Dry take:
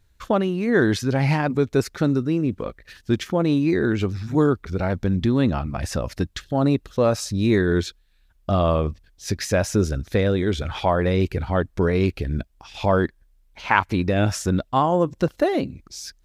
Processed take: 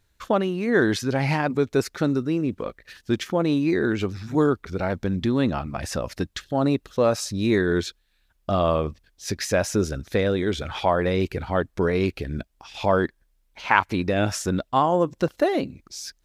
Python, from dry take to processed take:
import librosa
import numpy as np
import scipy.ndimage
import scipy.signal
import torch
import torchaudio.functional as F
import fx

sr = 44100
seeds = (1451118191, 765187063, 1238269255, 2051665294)

y = fx.low_shelf(x, sr, hz=150.0, db=-8.5)